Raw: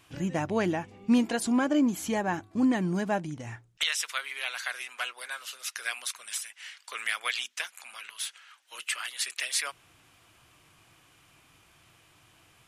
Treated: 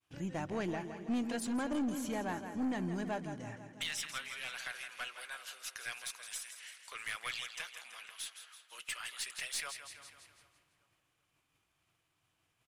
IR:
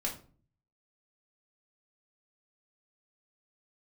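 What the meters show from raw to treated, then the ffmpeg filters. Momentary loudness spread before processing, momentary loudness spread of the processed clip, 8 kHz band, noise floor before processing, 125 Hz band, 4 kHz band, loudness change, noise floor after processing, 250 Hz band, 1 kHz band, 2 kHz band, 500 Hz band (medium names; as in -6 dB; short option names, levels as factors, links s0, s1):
13 LU, 12 LU, -8.5 dB, -62 dBFS, -8.5 dB, -8.5 dB, -9.5 dB, -80 dBFS, -10.0 dB, -8.5 dB, -8.5 dB, -9.0 dB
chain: -filter_complex "[0:a]asplit=2[s0][s1];[s1]aecho=0:1:165|330|495|660|825|990|1155:0.299|0.173|0.1|0.0582|0.0338|0.0196|0.0114[s2];[s0][s2]amix=inputs=2:normalize=0,agate=range=0.0224:threshold=0.00282:ratio=3:detection=peak,asplit=2[s3][s4];[s4]adelay=389,lowpass=f=2000:p=1,volume=0.106,asplit=2[s5][s6];[s6]adelay=389,lowpass=f=2000:p=1,volume=0.48,asplit=2[s7][s8];[s8]adelay=389,lowpass=f=2000:p=1,volume=0.48,asplit=2[s9][s10];[s10]adelay=389,lowpass=f=2000:p=1,volume=0.48[s11];[s5][s7][s9][s11]amix=inputs=4:normalize=0[s12];[s3][s12]amix=inputs=2:normalize=0,aeval=exprs='(tanh(12.6*val(0)+0.2)-tanh(0.2))/12.6':c=same,volume=0.422"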